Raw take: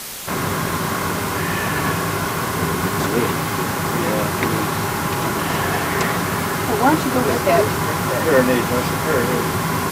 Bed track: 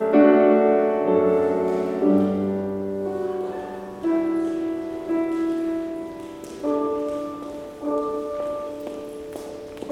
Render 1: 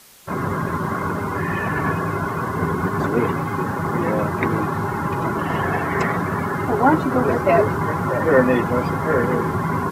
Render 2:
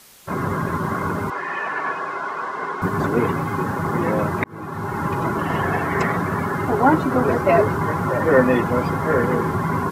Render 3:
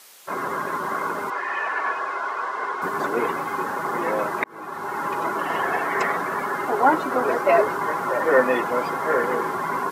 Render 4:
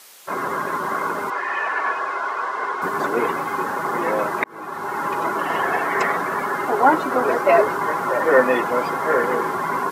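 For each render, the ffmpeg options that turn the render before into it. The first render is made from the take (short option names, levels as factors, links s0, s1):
-af "afftdn=nr=17:nf=-23"
-filter_complex "[0:a]asettb=1/sr,asplit=3[s0][s1][s2];[s0]atrim=end=1.304[s3];[s1]atrim=start=1.3:end=2.82,asetpts=PTS-STARTPTS,afade=t=in:d=0.004:c=qsin,afade=t=out:st=1.516:d=0.004:c=qsin,highpass=570,lowpass=5200[s4];[s2]atrim=start=2.816[s5];[s3][s4]acrossfade=d=0.004:c1=hsin:c2=qsin[s6];[s6][s5]acrossfade=d=0.004:c1=qsin:c2=hsin,asplit=2[s7][s8];[s7]atrim=end=4.44,asetpts=PTS-STARTPTS,afade=t=out:st=4.436:d=0.004:c=hsin[s9];[s8]atrim=start=4.44,asetpts=PTS-STARTPTS,afade=t=in:d=0.6[s10];[s9][s10]concat=n=2:v=0:a=1"
-af "highpass=440"
-af "volume=1.33"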